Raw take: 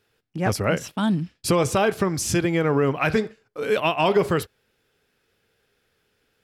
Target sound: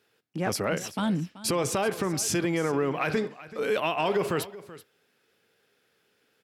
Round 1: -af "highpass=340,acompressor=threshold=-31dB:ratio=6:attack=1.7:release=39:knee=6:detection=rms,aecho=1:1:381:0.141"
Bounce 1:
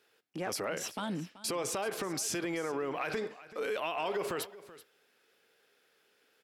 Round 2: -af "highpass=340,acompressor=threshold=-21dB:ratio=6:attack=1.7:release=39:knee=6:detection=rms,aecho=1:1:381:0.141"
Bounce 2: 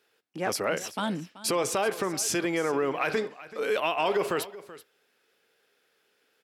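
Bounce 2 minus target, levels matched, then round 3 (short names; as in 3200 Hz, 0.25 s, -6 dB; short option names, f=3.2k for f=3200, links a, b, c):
125 Hz band -7.5 dB
-af "highpass=170,acompressor=threshold=-21dB:ratio=6:attack=1.7:release=39:knee=6:detection=rms,aecho=1:1:381:0.141"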